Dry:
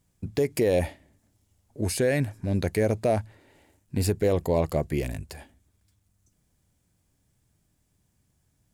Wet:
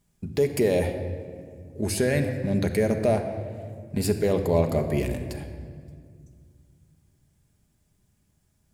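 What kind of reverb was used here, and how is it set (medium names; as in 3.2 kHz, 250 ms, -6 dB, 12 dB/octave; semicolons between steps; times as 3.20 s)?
simulated room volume 3900 m³, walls mixed, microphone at 1.3 m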